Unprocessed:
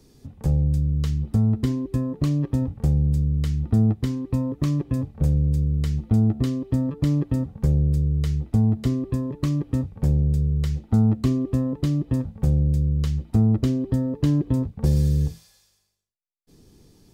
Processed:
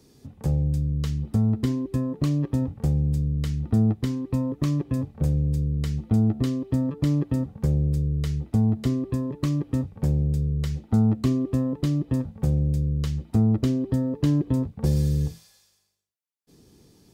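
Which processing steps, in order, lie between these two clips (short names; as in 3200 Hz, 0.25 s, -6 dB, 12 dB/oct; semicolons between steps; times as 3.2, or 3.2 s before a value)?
HPF 96 Hz 6 dB/oct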